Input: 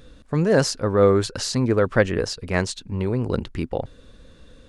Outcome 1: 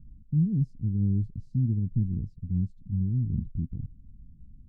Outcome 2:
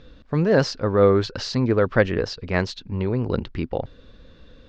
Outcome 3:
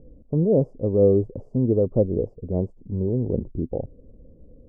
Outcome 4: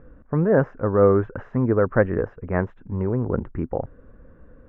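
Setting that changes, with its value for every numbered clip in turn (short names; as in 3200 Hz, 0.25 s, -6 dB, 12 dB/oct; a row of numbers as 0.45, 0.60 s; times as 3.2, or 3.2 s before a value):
inverse Chebyshev low-pass, stop band from: 510, 11000, 1500, 4100 Hz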